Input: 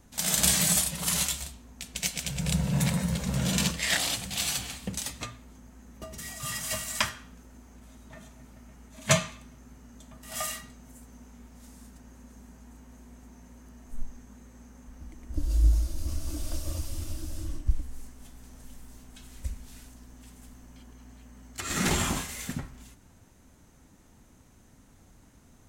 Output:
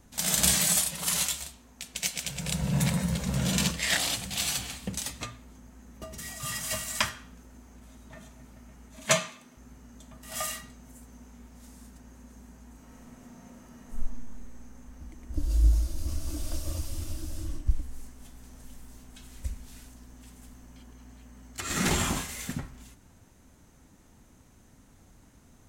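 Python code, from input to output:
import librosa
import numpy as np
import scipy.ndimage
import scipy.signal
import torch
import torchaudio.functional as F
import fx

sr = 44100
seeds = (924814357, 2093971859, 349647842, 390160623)

y = fx.low_shelf(x, sr, hz=240.0, db=-8.0, at=(0.58, 2.62))
y = fx.highpass(y, sr, hz=230.0, slope=12, at=(9.05, 9.57))
y = fx.reverb_throw(y, sr, start_s=12.74, length_s=1.29, rt60_s=1.6, drr_db=-1.0)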